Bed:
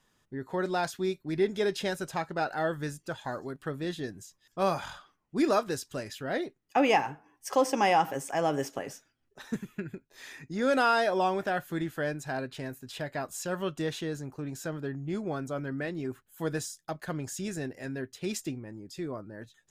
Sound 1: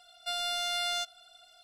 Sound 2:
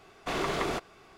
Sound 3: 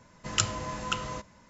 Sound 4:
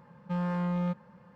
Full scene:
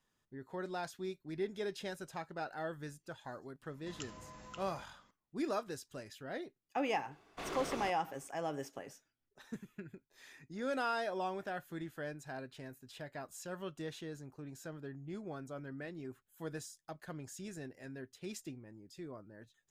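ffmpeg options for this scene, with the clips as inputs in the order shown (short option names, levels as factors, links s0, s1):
-filter_complex "[0:a]volume=0.282[s0];[3:a]acompressor=threshold=0.00501:ratio=2:attack=26:release=37:knee=1:detection=peak,atrim=end=1.49,asetpts=PTS-STARTPTS,volume=0.237,afade=t=in:d=0.004:c=hsin,afade=t=out:st=1.486:d=0.004:c=hsin,adelay=3620[s1];[2:a]atrim=end=1.17,asetpts=PTS-STARTPTS,volume=0.266,afade=t=in:d=0.004:c=hsin,afade=t=out:st=1.166:d=0.004:c=hsin,adelay=7110[s2];[s0][s1][s2]amix=inputs=3:normalize=0"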